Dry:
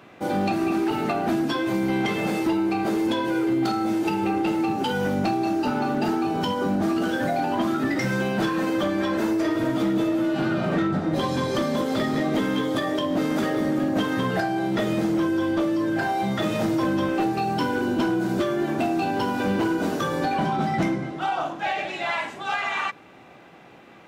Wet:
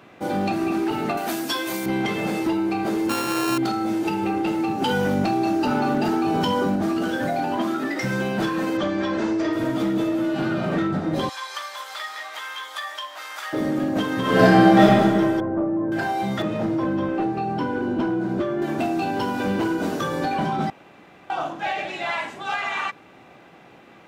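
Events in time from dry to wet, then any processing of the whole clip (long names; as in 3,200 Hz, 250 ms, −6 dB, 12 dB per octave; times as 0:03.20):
0:01.17–0:01.86: RIAA equalisation recording
0:03.09–0:03.58: samples sorted by size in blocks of 32 samples
0:04.82–0:06.76: envelope flattener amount 100%
0:07.56–0:08.02: high-pass filter 140 Hz → 370 Hz
0:08.77–0:09.53: low-pass filter 6,900 Hz 24 dB per octave
0:11.29–0:13.53: high-pass filter 960 Hz 24 dB per octave
0:14.21–0:14.81: thrown reverb, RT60 2.2 s, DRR −10.5 dB
0:15.40–0:15.92: Bessel low-pass filter 940 Hz, order 4
0:16.42–0:18.62: low-pass filter 1,400 Hz 6 dB per octave
0:20.70–0:21.30: fill with room tone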